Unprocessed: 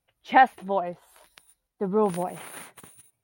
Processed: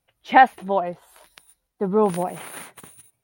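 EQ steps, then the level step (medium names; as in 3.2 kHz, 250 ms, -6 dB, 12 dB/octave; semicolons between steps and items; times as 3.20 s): hum notches 50/100 Hz; +4.0 dB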